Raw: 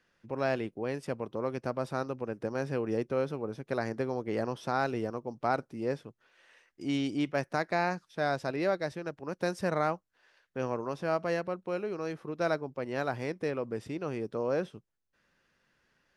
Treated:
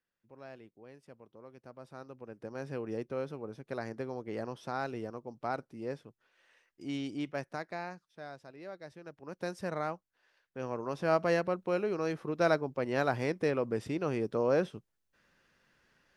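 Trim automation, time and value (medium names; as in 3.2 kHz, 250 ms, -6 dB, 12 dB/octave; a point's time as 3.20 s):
1.55 s -19 dB
2.72 s -6 dB
7.35 s -6 dB
8.53 s -18.5 dB
9.37 s -6 dB
10.58 s -6 dB
11.13 s +2.5 dB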